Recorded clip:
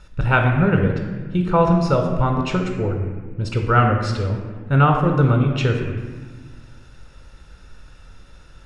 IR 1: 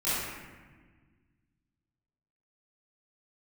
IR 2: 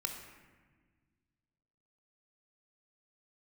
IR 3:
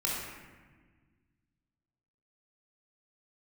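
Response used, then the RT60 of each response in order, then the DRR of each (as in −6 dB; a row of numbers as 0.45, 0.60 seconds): 2; 1.4, 1.5, 1.4 seconds; −15.0, 3.0, −5.0 decibels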